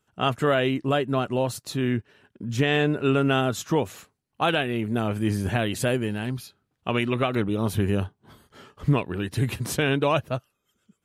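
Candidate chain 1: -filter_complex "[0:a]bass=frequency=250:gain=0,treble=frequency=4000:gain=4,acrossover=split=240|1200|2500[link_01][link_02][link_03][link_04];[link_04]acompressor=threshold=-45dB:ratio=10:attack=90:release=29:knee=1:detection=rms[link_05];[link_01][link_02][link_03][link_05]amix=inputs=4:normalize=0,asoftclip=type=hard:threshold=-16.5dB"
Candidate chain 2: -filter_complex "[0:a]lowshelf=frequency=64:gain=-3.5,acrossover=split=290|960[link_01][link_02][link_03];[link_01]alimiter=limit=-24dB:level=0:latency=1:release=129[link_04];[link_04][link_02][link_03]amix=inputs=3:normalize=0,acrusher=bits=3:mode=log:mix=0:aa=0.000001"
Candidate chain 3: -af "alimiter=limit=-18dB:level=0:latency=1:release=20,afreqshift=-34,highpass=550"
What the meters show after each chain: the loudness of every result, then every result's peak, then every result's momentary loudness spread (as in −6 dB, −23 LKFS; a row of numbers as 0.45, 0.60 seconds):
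−26.5, −26.0, −33.5 LKFS; −16.5, −11.5, −15.5 dBFS; 9, 11, 12 LU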